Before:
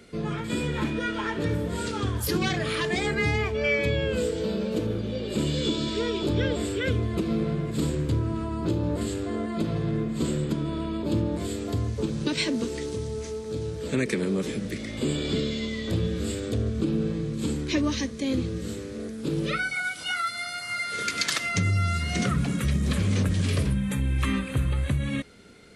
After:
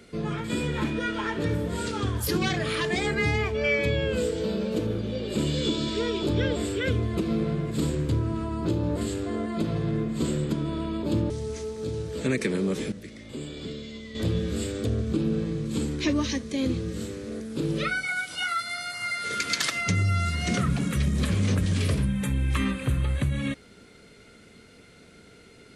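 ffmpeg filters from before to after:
-filter_complex "[0:a]asplit=4[s0][s1][s2][s3];[s0]atrim=end=11.302[s4];[s1]atrim=start=12.978:end=14.602[s5];[s2]atrim=start=14.598:end=15.832,asetpts=PTS-STARTPTS,volume=0.335[s6];[s3]atrim=start=15.828[s7];[s4][s5]acrossfade=d=0.004:c1=hsin:c2=hsin[s8];[s8][s6]acrossfade=d=0.004:c1=hsin:c2=hsin[s9];[s9][s7]acrossfade=d=0.004:c1=hsin:c2=hsin"

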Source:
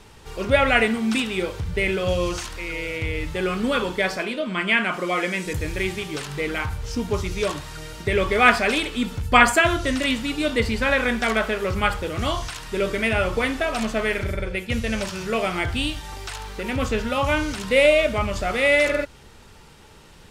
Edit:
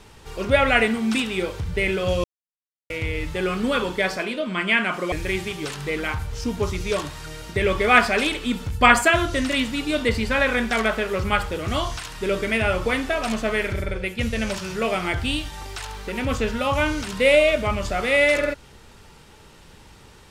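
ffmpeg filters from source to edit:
-filter_complex "[0:a]asplit=4[s0][s1][s2][s3];[s0]atrim=end=2.24,asetpts=PTS-STARTPTS,afade=t=out:st=2.236:d=0.004:c=hsin[s4];[s1]atrim=start=2.24:end=2.9,asetpts=PTS-STARTPTS,volume=0[s5];[s2]atrim=start=2.9:end=5.122,asetpts=PTS-STARTPTS,afade=t=in:d=0.004:c=hsin[s6];[s3]atrim=start=5.628[s7];[s4][s5][s6]concat=n=3:v=0:a=1[s8];[s8][s7]acrossfade=d=0.004:c1=hsin:c2=hsin"

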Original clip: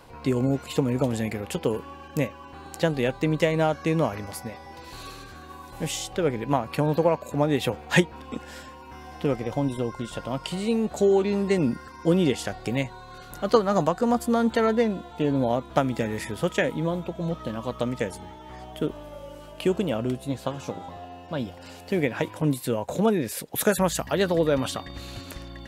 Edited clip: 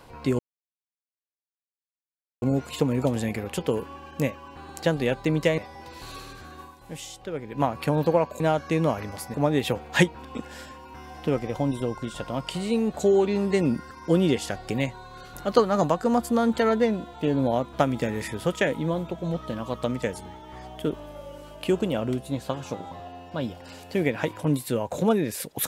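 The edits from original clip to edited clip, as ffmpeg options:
-filter_complex "[0:a]asplit=7[s0][s1][s2][s3][s4][s5][s6];[s0]atrim=end=0.39,asetpts=PTS-STARTPTS,afade=t=out:st=0.386:d=0.004:c=hsin,apad=pad_dur=2.03[s7];[s1]atrim=start=0.39:end=3.552,asetpts=PTS-STARTPTS,afade=t=in:d=0.004:c=hsin[s8];[s2]atrim=start=4.488:end=5.67,asetpts=PTS-STARTPTS,afade=t=out:st=1.022:d=0.16:silence=0.375837[s9];[s3]atrim=start=5.67:end=6.39,asetpts=PTS-STARTPTS,volume=0.376[s10];[s4]atrim=start=6.39:end=7.312,asetpts=PTS-STARTPTS,afade=t=in:d=0.16:silence=0.375837[s11];[s5]atrim=start=3.548:end=4.492[s12];[s6]atrim=start=7.308[s13];[s7][s8]concat=n=2:v=0:a=1[s14];[s9][s10][s11]concat=n=3:v=0:a=1[s15];[s14][s15]acrossfade=d=0.004:c1=hsin:c2=hsin[s16];[s16][s12]acrossfade=d=0.004:c1=hsin:c2=hsin[s17];[s17][s13]acrossfade=d=0.004:c1=hsin:c2=hsin"

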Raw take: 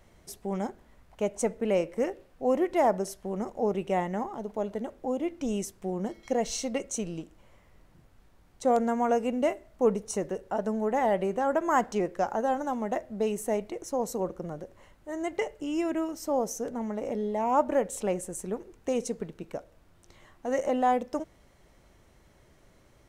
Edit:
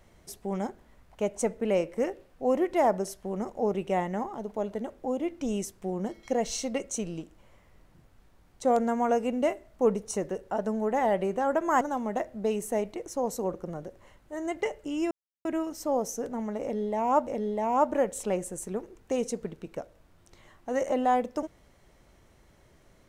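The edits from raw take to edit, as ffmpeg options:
-filter_complex "[0:a]asplit=4[s0][s1][s2][s3];[s0]atrim=end=11.812[s4];[s1]atrim=start=12.568:end=15.87,asetpts=PTS-STARTPTS,afade=t=out:st=3.298:d=0.004:c=hsin,apad=pad_dur=0.34[s5];[s2]atrim=start=15.87:end=17.692,asetpts=PTS-STARTPTS,afade=t=in:d=0.004:c=hsin[s6];[s3]atrim=start=17.038[s7];[s5][s6]concat=n=2:v=0:a=1[s8];[s4][s8]acrossfade=d=0.004:c1=hsin:c2=hsin[s9];[s9][s7]acrossfade=d=0.004:c1=hsin:c2=hsin"

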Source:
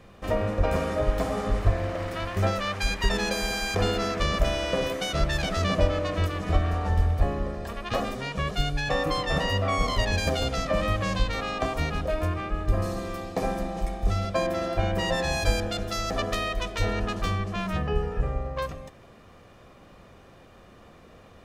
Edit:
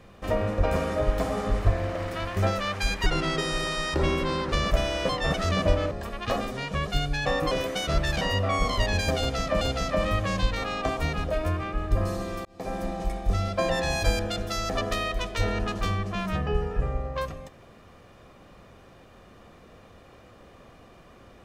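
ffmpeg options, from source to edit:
-filter_complex "[0:a]asplit=11[s0][s1][s2][s3][s4][s5][s6][s7][s8][s9][s10];[s0]atrim=end=3.064[s11];[s1]atrim=start=3.06:end=4.2,asetpts=PTS-STARTPTS,asetrate=34398,aresample=44100[s12];[s2]atrim=start=4.196:end=4.772[s13];[s3]atrim=start=9.148:end=9.402[s14];[s4]atrim=start=5.468:end=6.042[s15];[s5]atrim=start=7.548:end=9.152[s16];[s6]atrim=start=4.768:end=5.472[s17];[s7]atrim=start=9.398:end=10.802[s18];[s8]atrim=start=10.378:end=13.22,asetpts=PTS-STARTPTS,afade=t=out:st=2.838:d=0.004:c=hsin[s19];[s9]atrim=start=13.22:end=14.462,asetpts=PTS-STARTPTS,afade=t=in:d=0.43[s20];[s10]atrim=start=15.098[s21];[s11][s12]acrossfade=d=0.004:c1=hsin:c2=hsin[s22];[s22][s13]acrossfade=d=0.004:c1=hsin:c2=hsin[s23];[s23][s14]acrossfade=d=0.004:c1=hsin:c2=hsin[s24];[s24][s15]acrossfade=d=0.004:c1=hsin:c2=hsin[s25];[s25][s16]acrossfade=d=0.004:c1=hsin:c2=hsin[s26];[s26][s17]acrossfade=d=0.004:c1=hsin:c2=hsin[s27];[s27][s18]acrossfade=d=0.004:c1=hsin:c2=hsin[s28];[s19][s20]concat=n=2:v=0:a=1[s29];[s28][s29]acrossfade=d=0.004:c1=hsin:c2=hsin[s30];[s30][s21]acrossfade=d=0.004:c1=hsin:c2=hsin"

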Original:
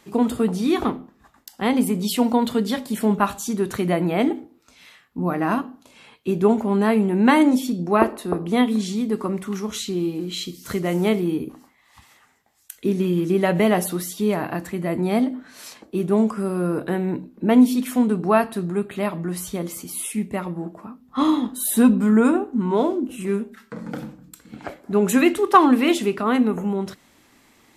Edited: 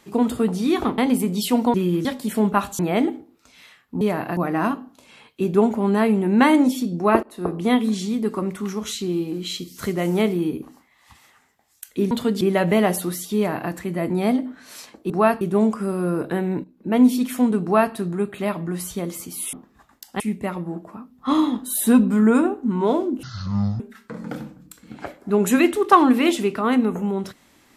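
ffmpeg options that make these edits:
-filter_complex "[0:a]asplit=17[s0][s1][s2][s3][s4][s5][s6][s7][s8][s9][s10][s11][s12][s13][s14][s15][s16];[s0]atrim=end=0.982[s17];[s1]atrim=start=1.648:end=2.412[s18];[s2]atrim=start=12.978:end=13.292[s19];[s3]atrim=start=2.708:end=3.452[s20];[s4]atrim=start=4.018:end=5.242[s21];[s5]atrim=start=14.238:end=14.602[s22];[s6]atrim=start=5.238:end=8.1,asetpts=PTS-STARTPTS,afade=t=out:st=2.858:d=0.004:c=hsin:silence=0.0891251[s23];[s7]atrim=start=8.1:end=12.982,asetpts=PTS-STARTPTS,afade=t=in:d=0.27:silence=0.0891251[s24];[s8]atrim=start=2.408:end=2.712[s25];[s9]atrim=start=13.288:end=15.982[s26];[s10]atrim=start=18.198:end=18.512[s27];[s11]atrim=start=15.978:end=17.21,asetpts=PTS-STARTPTS,afade=t=out:st=1.228:d=0.004:c=hsin:silence=0.199526[s28];[s12]atrim=start=17.21:end=20.102,asetpts=PTS-STARTPTS,afade=t=in:d=0.45:silence=0.199526[s29];[s13]atrim=start=0.978:end=1.652[s30];[s14]atrim=start=20.098:end=23.134[s31];[s15]atrim=start=23.13:end=23.42,asetpts=PTS-STARTPTS,asetrate=22491,aresample=44100,atrim=end_sample=25076,asetpts=PTS-STARTPTS[s32];[s16]atrim=start=23.416[s33];[s17][s18]acrossfade=d=0.004:c1=hsin:c2=hsin[s34];[s34][s19]acrossfade=d=0.004:c1=hsin:c2=hsin[s35];[s35][s20]acrossfade=d=0.004:c1=hsin:c2=hsin[s36];[s36][s21]acrossfade=d=0.004:c1=hsin:c2=hsin[s37];[s37][s22]acrossfade=d=0.004:c1=hsin:c2=hsin[s38];[s23][s24]concat=n=2:v=0:a=1[s39];[s38][s39]acrossfade=d=0.004:c1=hsin:c2=hsin[s40];[s40][s25]acrossfade=d=0.004:c1=hsin:c2=hsin[s41];[s41][s26]acrossfade=d=0.004:c1=hsin:c2=hsin[s42];[s42][s27]acrossfade=d=0.004:c1=hsin:c2=hsin[s43];[s28][s29]concat=n=2:v=0:a=1[s44];[s43][s44]acrossfade=d=0.004:c1=hsin:c2=hsin[s45];[s45][s30]acrossfade=d=0.004:c1=hsin:c2=hsin[s46];[s46][s31]acrossfade=d=0.004:c1=hsin:c2=hsin[s47];[s47][s32]acrossfade=d=0.004:c1=hsin:c2=hsin[s48];[s48][s33]acrossfade=d=0.004:c1=hsin:c2=hsin"

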